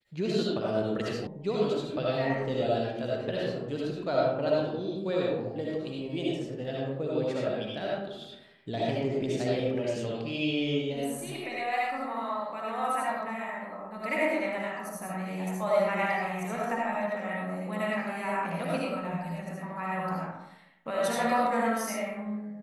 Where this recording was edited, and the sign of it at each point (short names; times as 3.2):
1.27 sound cut off